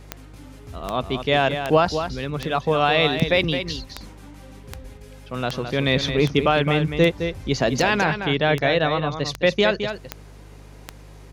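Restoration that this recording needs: de-click; de-hum 50.4 Hz, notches 3; inverse comb 214 ms -8.5 dB

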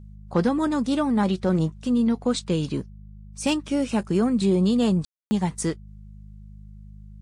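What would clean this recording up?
clip repair -12.5 dBFS; de-hum 51.4 Hz, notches 4; room tone fill 5.05–5.31 s

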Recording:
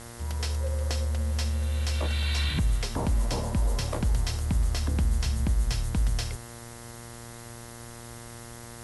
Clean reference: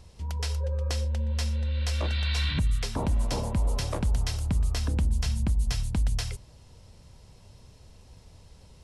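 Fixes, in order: de-hum 117.8 Hz, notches 18; noise reduction 9 dB, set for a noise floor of -43 dBFS

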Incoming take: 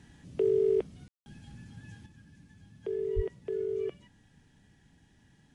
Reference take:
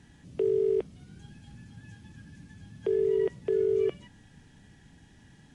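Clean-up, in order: 3.15–3.27 s: high-pass 140 Hz 24 dB/octave; room tone fill 1.08–1.26 s; trim 0 dB, from 2.06 s +7 dB

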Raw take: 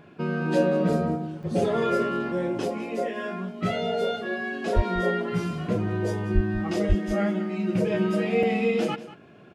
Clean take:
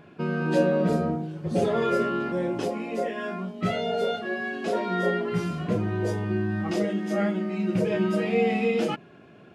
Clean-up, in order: 4.75–4.87 s: high-pass 140 Hz 24 dB/octave; 6.34–6.46 s: high-pass 140 Hz 24 dB/octave; 6.88–7.00 s: high-pass 140 Hz 24 dB/octave; interpolate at 1.43/8.43 s, 3.4 ms; inverse comb 189 ms -15.5 dB

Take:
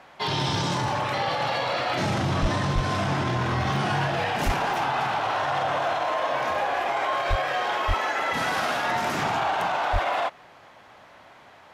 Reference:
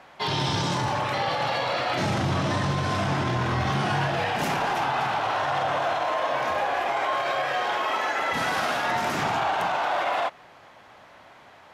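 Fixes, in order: clip repair -16 dBFS; de-plosive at 2.41/2.74/4.45/7.29/7.87/9.92 s; interpolate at 3.76/4.74/7.48 s, 1.3 ms

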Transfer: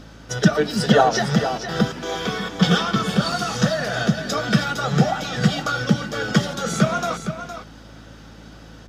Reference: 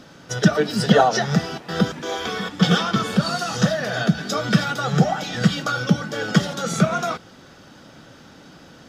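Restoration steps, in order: de-hum 54.5 Hz, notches 5; interpolate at 3.32 s, 2.4 ms; inverse comb 463 ms -9.5 dB

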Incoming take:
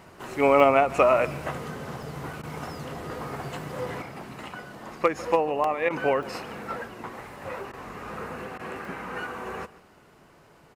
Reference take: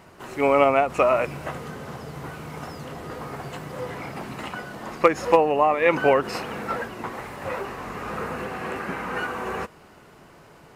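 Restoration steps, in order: interpolate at 0.60/2.03/2.33/3.86/5.64/6.23/8.85 s, 2.6 ms; interpolate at 2.42/5.89/7.72/8.58 s, 12 ms; inverse comb 147 ms -19 dB; trim 0 dB, from 4.02 s +5.5 dB

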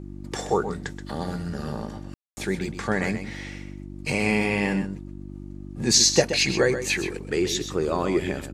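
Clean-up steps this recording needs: de-hum 48.7 Hz, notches 7; room tone fill 2.14–2.37 s; inverse comb 127 ms -10 dB

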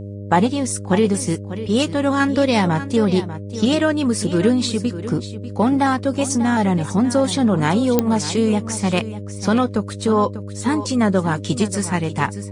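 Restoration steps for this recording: de-click; de-hum 100.8 Hz, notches 6; inverse comb 594 ms -13 dB

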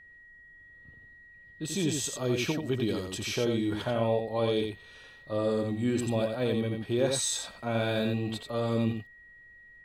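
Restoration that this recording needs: band-stop 1.9 kHz, Q 30; expander -46 dBFS, range -21 dB; inverse comb 87 ms -5 dB

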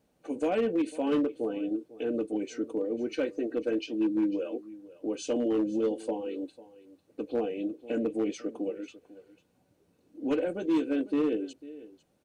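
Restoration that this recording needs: clip repair -21.5 dBFS; inverse comb 498 ms -18.5 dB

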